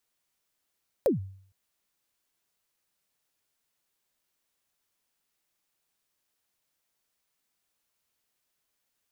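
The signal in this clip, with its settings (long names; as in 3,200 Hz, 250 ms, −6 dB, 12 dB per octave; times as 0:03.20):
synth kick length 0.46 s, from 600 Hz, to 96 Hz, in 133 ms, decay 0.57 s, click on, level −17 dB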